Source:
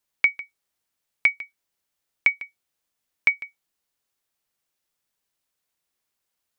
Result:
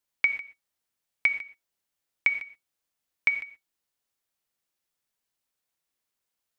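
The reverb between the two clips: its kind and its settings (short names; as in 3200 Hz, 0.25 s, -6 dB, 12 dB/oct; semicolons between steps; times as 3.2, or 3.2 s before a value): non-linear reverb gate 0.15 s flat, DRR 10 dB; gain -4 dB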